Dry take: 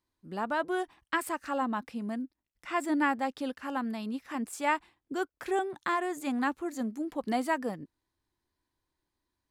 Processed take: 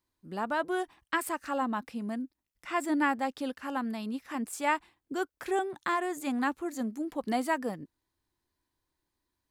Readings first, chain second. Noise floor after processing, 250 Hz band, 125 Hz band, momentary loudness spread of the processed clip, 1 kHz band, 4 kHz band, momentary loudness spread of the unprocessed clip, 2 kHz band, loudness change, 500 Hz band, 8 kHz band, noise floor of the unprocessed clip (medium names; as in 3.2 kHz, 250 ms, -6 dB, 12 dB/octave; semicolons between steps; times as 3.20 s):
-85 dBFS, 0.0 dB, no reading, 8 LU, 0.0 dB, +0.5 dB, 8 LU, 0.0 dB, 0.0 dB, 0.0 dB, +2.0 dB, under -85 dBFS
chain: treble shelf 8.3 kHz +4 dB